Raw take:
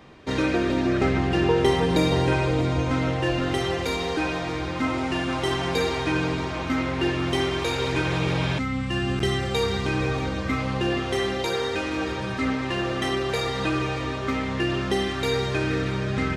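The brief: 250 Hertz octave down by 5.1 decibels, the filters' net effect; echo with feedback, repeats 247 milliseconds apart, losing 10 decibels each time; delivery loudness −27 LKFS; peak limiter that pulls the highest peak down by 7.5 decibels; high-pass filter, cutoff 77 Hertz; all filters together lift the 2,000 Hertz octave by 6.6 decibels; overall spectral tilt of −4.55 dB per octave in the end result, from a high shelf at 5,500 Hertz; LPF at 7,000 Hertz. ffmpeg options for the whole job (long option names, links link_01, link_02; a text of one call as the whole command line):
ffmpeg -i in.wav -af "highpass=77,lowpass=7000,equalizer=frequency=250:width_type=o:gain=-7.5,equalizer=frequency=2000:width_type=o:gain=7.5,highshelf=frequency=5500:gain=5,alimiter=limit=-15dB:level=0:latency=1,aecho=1:1:247|494|741|988:0.316|0.101|0.0324|0.0104,volume=-2.5dB" out.wav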